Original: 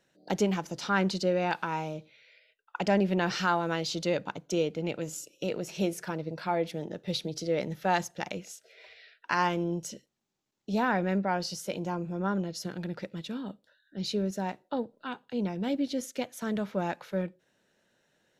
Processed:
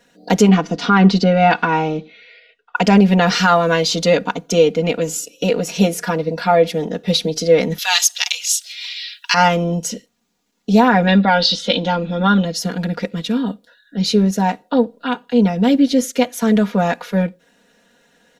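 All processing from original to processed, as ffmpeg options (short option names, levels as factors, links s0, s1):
-filter_complex "[0:a]asettb=1/sr,asplit=3[s0][s1][s2];[s0]atrim=end=0.484[s3];[s1]atrim=start=0.48:end=2.76,asetpts=PTS-STARTPTS,afade=t=in:d=0.004:c=qsin,afade=t=out:st=2.276:d=0.004:c=qsin,lowpass=3900,equalizer=f=200:t=o:w=1.1:g=7.5,aecho=1:1:2.7:0.41,atrim=end_sample=100548[s4];[s2]atrim=start=2.756[s5];[s3][s4]acrossfade=d=0.004:c1=hsin:c2=qsin[s6];[s6][s5]acrossfade=d=0.004:c1=qsin:c2=hsin,asettb=1/sr,asplit=3[s7][s8][s9];[s7]atrim=end=7.784[s10];[s8]atrim=start=7.78:end=9.34,asetpts=PTS-STARTPTS,afade=t=in:d=0.004:c=qsin,afade=t=out:st=1.556:d=0.004:c=qsin,highpass=f=1100:w=0.5412,highpass=f=1100:w=1.3066,highshelf=f=2400:t=q:w=1.5:g=12.5[s11];[s9]atrim=start=9.336[s12];[s10][s11]acrossfade=d=0.004:c1=hsin:c2=qsin[s13];[s13][s12]acrossfade=d=0.004:c1=qsin:c2=hsin,asettb=1/sr,asplit=3[s14][s15][s16];[s14]atrim=end=11.074[s17];[s15]atrim=start=11.07:end=12.45,asetpts=PTS-STARTPTS,afade=t=in:d=0.004:c=qsin,afade=t=out:st=1.376:d=0.004:c=qsin,lowpass=f=3700:t=q:w=8.4,aecho=1:1:3.6:0.45,atrim=end_sample=60858[s18];[s16]atrim=start=12.446[s19];[s17][s18]acrossfade=d=0.004:c1=hsin:c2=qsin[s20];[s20][s19]acrossfade=d=0.004:c1=qsin:c2=hsin,aecho=1:1:4.2:0.92,alimiter=level_in=4.73:limit=0.891:release=50:level=0:latency=1,volume=0.891"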